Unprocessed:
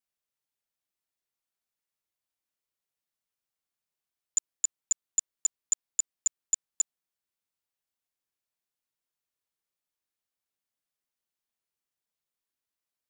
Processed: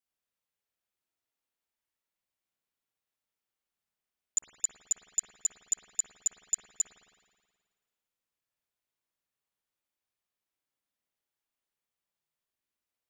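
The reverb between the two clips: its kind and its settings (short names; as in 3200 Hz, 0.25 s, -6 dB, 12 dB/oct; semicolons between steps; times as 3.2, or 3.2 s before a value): spring tank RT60 1.7 s, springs 53 ms, chirp 50 ms, DRR -1.5 dB; gain -2.5 dB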